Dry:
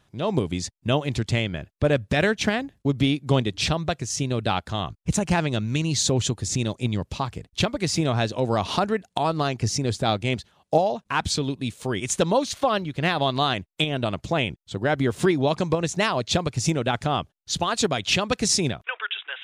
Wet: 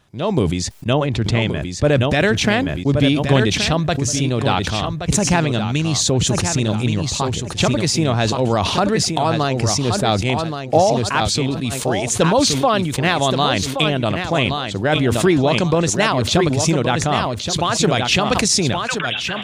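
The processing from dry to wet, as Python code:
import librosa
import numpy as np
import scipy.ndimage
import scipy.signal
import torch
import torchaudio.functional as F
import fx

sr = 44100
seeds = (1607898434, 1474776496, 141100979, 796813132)

y = fx.lowpass(x, sr, hz=2000.0, slope=6, at=(0.93, 1.42))
y = fx.echo_feedback(y, sr, ms=1124, feedback_pct=18, wet_db=-8.0)
y = fx.sustainer(y, sr, db_per_s=36.0)
y = F.gain(torch.from_numpy(y), 4.5).numpy()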